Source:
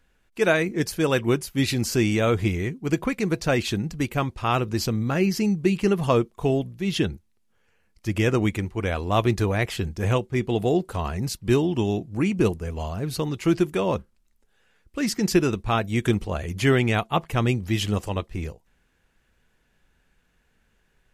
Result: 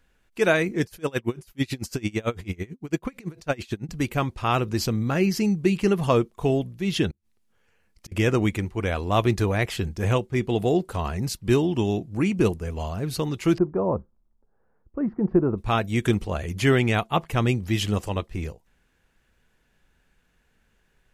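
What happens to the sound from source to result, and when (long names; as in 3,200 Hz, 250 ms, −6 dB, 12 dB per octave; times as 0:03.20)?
0:00.84–0:03.89: tremolo with a sine in dB 9 Hz, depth 28 dB
0:07.10–0:08.12: gate with flip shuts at −28 dBFS, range −35 dB
0:13.58–0:15.58: low-pass filter 1,100 Hz 24 dB per octave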